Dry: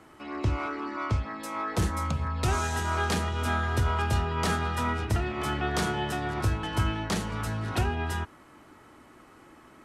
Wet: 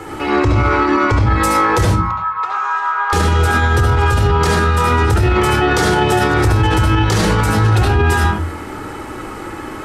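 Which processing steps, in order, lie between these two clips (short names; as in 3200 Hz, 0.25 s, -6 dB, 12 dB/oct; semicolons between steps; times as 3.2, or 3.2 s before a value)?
compressor, threshold -28 dBFS, peak gain reduction 7.5 dB; 1.85–3.13 ladder band-pass 1200 Hz, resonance 65%; reverb RT60 0.30 s, pre-delay 67 ms, DRR 1.5 dB; maximiser +24 dB; gain -4.5 dB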